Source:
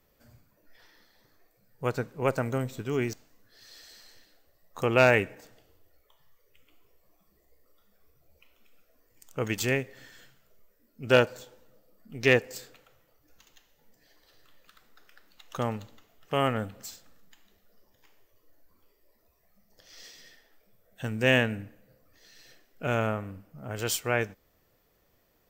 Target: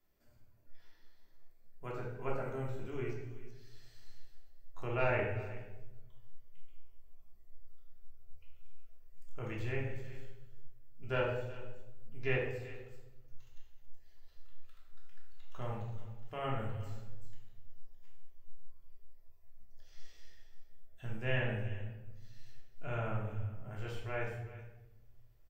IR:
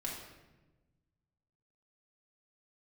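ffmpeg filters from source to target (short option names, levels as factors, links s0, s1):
-filter_complex "[0:a]aecho=1:1:376:0.126,acrossover=split=2900[s0][s1];[s1]acompressor=threshold=0.00224:ratio=4:attack=1:release=60[s2];[s0][s2]amix=inputs=2:normalize=0[s3];[1:a]atrim=start_sample=2205,asetrate=57330,aresample=44100[s4];[s3][s4]afir=irnorm=-1:irlink=0,asubboost=boost=9.5:cutoff=72,volume=0.355"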